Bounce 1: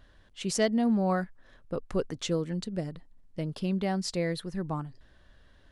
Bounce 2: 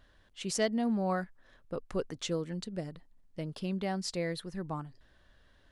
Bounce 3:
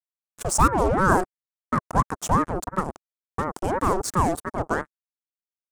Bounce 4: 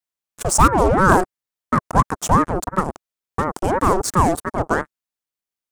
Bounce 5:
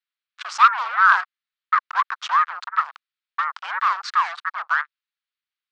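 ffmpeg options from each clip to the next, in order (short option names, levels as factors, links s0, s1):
-af "lowshelf=f=370:g=-3.5,volume=0.75"
-af "acrusher=bits=5:mix=0:aa=0.5,equalizer=f=125:t=o:w=1:g=4,equalizer=f=500:t=o:w=1:g=8,equalizer=f=1000:t=o:w=1:g=10,equalizer=f=2000:t=o:w=1:g=-7,equalizer=f=4000:t=o:w=1:g=-11,equalizer=f=8000:t=o:w=1:g=11,aeval=exprs='val(0)*sin(2*PI*470*n/s+470*0.65/2.9*sin(2*PI*2.9*n/s))':c=same,volume=2.51"
-af "asoftclip=type=hard:threshold=0.355,volume=1.88"
-af "asuperpass=centerf=2300:order=8:qfactor=0.71,volume=1.68"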